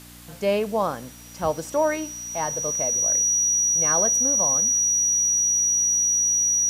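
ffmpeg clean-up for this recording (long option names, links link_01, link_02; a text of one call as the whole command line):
ffmpeg -i in.wav -af "adeclick=threshold=4,bandreject=frequency=59.4:width_type=h:width=4,bandreject=frequency=118.8:width_type=h:width=4,bandreject=frequency=178.2:width_type=h:width=4,bandreject=frequency=237.6:width_type=h:width=4,bandreject=frequency=297:width_type=h:width=4,bandreject=frequency=5800:width=30,afftdn=noise_reduction=30:noise_floor=-40" out.wav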